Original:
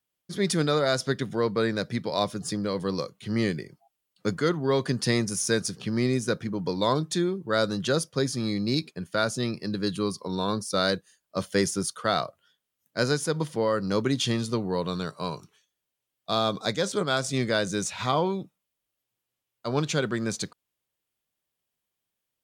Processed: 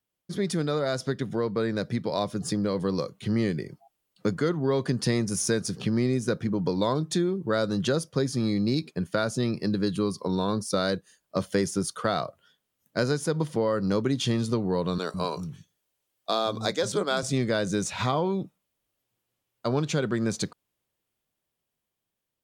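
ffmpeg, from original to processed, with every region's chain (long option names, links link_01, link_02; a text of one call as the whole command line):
ffmpeg -i in.wav -filter_complex "[0:a]asettb=1/sr,asplit=3[link_01][link_02][link_03];[link_01]atrim=end=14.984[link_04];[link_02]atrim=start=14.98:end=17.23,asetpts=PTS-STARTPTS,afade=type=in:duration=0.004:curve=qsin,afade=type=out:start_time=2.246:duration=0.004:curve=qsin,bass=frequency=250:gain=-4,treble=frequency=4000:gain=3,acrossover=split=210[link_05][link_06];[link_05]adelay=160[link_07];[link_07][link_06]amix=inputs=2:normalize=0,atrim=end_sample=99225[link_08];[link_03]atrim=start=17.226[link_09];[link_04][link_08]acrossfade=duration=0.004:curve1=hsin:curve2=qsin[link_10];[link_10][link_09]acrossfade=duration=0.004:curve1=qsin:curve2=hsin,dynaudnorm=framelen=700:gausssize=7:maxgain=5.5dB,tiltshelf=frequency=970:gain=3,acompressor=threshold=-25dB:ratio=2.5" out.wav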